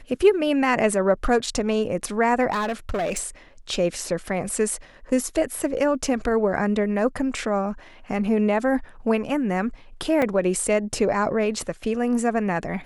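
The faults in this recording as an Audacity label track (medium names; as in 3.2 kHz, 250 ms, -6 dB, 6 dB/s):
2.520000	3.240000	clipped -21 dBFS
10.220000	10.220000	dropout 2.8 ms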